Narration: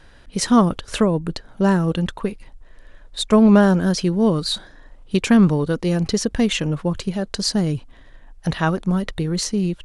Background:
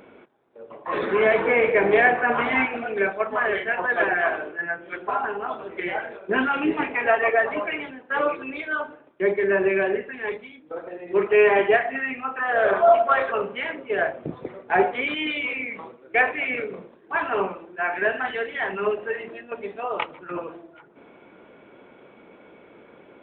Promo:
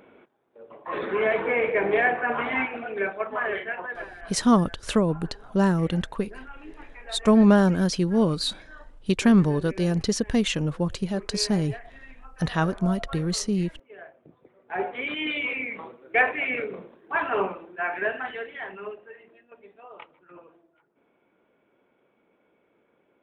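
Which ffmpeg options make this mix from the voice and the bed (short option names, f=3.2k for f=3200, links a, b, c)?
-filter_complex "[0:a]adelay=3950,volume=-4dB[a];[1:a]volume=16dB,afade=t=out:st=3.57:d=0.54:silence=0.141254,afade=t=in:st=14.55:d=0.8:silence=0.0944061,afade=t=out:st=17.49:d=1.58:silence=0.149624[b];[a][b]amix=inputs=2:normalize=0"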